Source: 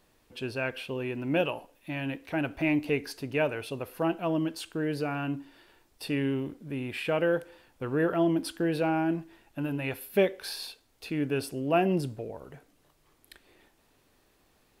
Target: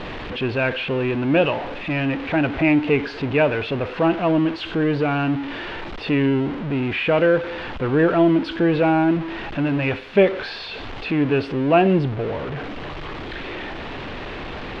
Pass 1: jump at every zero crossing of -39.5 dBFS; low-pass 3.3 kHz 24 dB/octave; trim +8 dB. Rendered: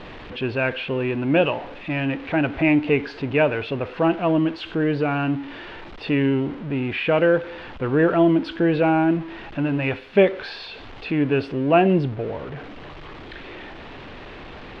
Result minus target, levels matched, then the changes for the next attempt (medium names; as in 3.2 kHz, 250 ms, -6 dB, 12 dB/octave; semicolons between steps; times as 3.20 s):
jump at every zero crossing: distortion -6 dB
change: jump at every zero crossing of -32 dBFS